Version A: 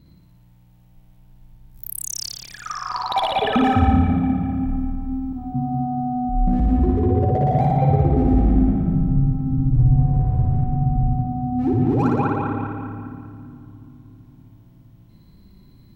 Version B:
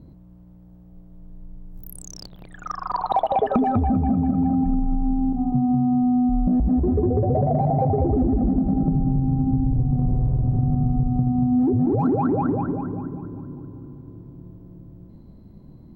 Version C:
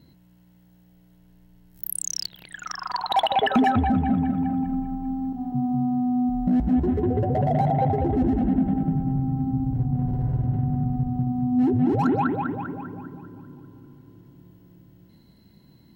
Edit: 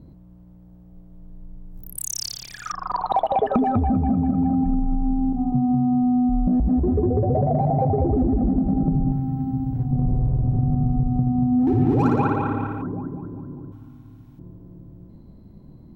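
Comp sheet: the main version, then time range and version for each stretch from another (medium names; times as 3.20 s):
B
1.97–2.72 s: from A
9.12–9.91 s: from C
11.67–12.82 s: from A
13.72–14.39 s: from A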